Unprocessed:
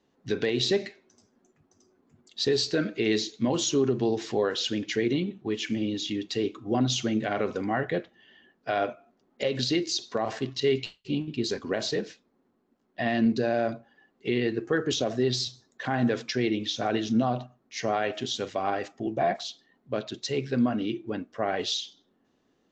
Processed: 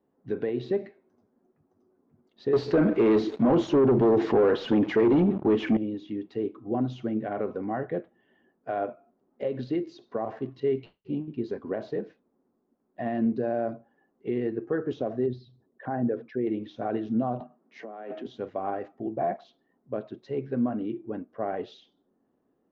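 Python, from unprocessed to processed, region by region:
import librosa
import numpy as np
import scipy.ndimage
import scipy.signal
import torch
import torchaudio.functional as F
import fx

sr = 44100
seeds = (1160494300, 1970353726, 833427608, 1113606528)

y = fx.chain(x, sr, fx.highpass(hz=81.0, slope=24),
    fx.leveller(passes=3),
    fx.env_flatten(amount_pct=50), at=(2.53, 5.77))
y = fx.chain(y, sr, fx.envelope_sharpen(power=1.5),
    fx.lowpass(hz=3300.0, slope=12), at=(15.26, 16.47))
y = fx.chain(y, sr, fx.cheby1_highpass(hz=150.0, order=10),
    fx.over_compress(threshold_db=-35.0, ratio=-1.0), at=(17.4, 18.27))
y = scipy.signal.sosfilt(scipy.signal.bessel(2, 830.0, 'lowpass', norm='mag', fs=sr, output='sos'), y)
y = fx.low_shelf(y, sr, hz=130.0, db=-8.0)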